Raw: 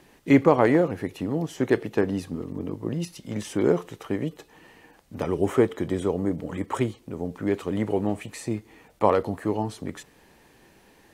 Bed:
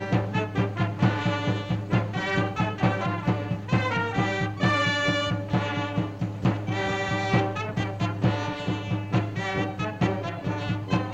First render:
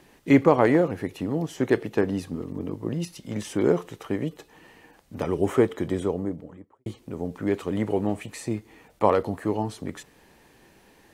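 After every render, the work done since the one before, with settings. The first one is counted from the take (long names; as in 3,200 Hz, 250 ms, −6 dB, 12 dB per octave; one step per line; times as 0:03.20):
0:05.89–0:06.86: fade out and dull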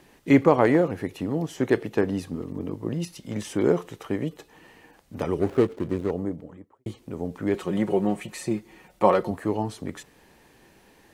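0:05.39–0:06.11: running median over 41 samples
0:07.54–0:09.31: comb filter 5.5 ms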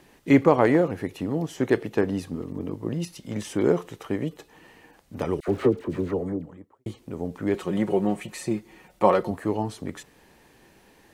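0:05.40–0:06.47: all-pass dispersion lows, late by 79 ms, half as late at 1,100 Hz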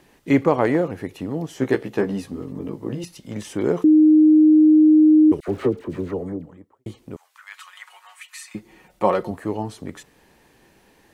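0:01.54–0:03.04: double-tracking delay 15 ms −4 dB
0:03.84–0:05.32: beep over 309 Hz −9 dBFS
0:07.16–0:08.55: Butterworth high-pass 1,100 Hz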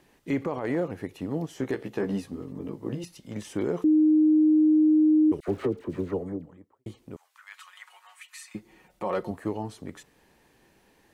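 brickwall limiter −16 dBFS, peak gain reduction 11.5 dB
expander for the loud parts 1.5 to 1, over −31 dBFS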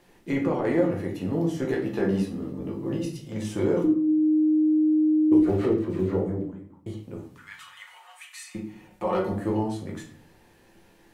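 rectangular room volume 73 cubic metres, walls mixed, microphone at 0.81 metres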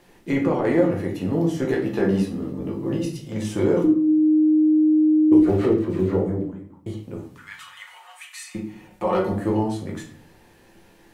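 level +4 dB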